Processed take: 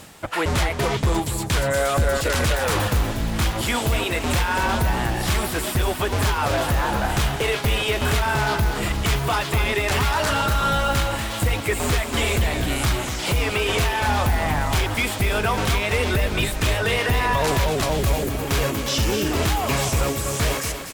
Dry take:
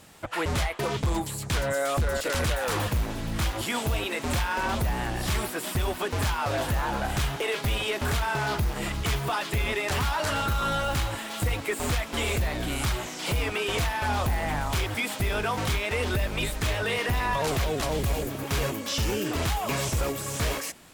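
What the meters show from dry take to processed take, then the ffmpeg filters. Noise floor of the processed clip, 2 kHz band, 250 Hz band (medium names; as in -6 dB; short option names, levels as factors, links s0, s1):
-29 dBFS, +6.0 dB, +6.0 dB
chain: -af "areverse,acompressor=mode=upward:threshold=0.02:ratio=2.5,areverse,aecho=1:1:241:0.376,volume=1.88"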